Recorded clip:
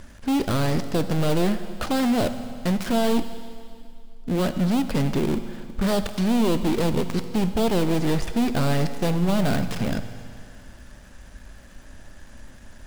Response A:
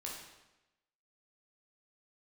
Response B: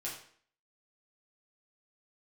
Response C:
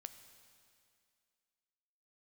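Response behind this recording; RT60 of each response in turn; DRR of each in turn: C; 1.0 s, 0.55 s, 2.3 s; -3.0 dB, -5.5 dB, 9.5 dB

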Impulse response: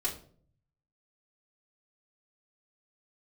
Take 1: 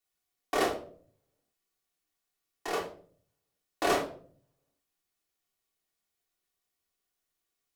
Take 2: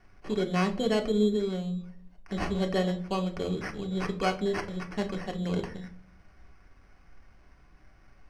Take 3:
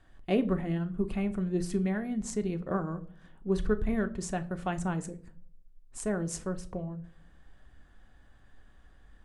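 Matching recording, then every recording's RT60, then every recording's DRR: 1; 0.50 s, 0.50 s, no single decay rate; -6.0 dB, 2.5 dB, 7.5 dB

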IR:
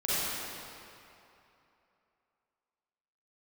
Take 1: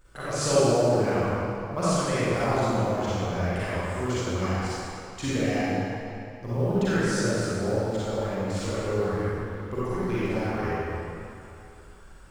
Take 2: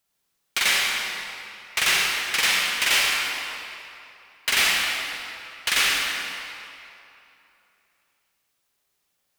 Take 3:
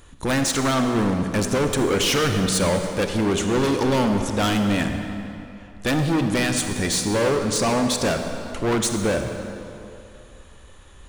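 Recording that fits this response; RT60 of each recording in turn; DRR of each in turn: 1; 2.9 s, 2.9 s, 2.8 s; -11.5 dB, -2.5 dB, 5.0 dB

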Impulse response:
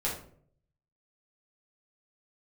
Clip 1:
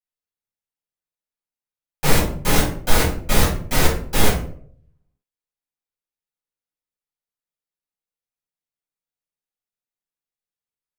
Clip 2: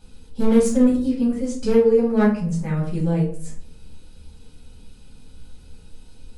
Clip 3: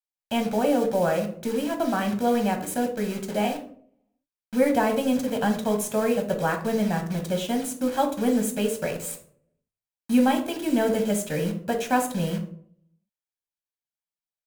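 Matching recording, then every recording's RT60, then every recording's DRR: 2; 0.55 s, 0.55 s, 0.55 s; -11.0 dB, -6.5 dB, 3.0 dB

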